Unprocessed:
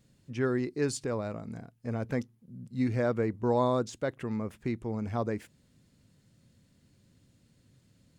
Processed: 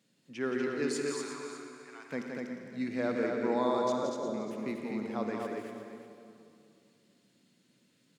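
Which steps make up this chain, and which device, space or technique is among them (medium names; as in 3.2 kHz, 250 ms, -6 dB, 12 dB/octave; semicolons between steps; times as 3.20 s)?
0.88–2.12 s: steep high-pass 930 Hz 36 dB/octave; 3.92–4.34 s: elliptic low-pass 660 Hz; stadium PA (high-pass 180 Hz 24 dB/octave; peaking EQ 2.9 kHz +5 dB 1.6 oct; loudspeakers at several distances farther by 59 m -6 dB, 83 m -4 dB; reverberation RT60 2.6 s, pre-delay 45 ms, DRR 5.5 dB); delay 355 ms -12 dB; trim -5 dB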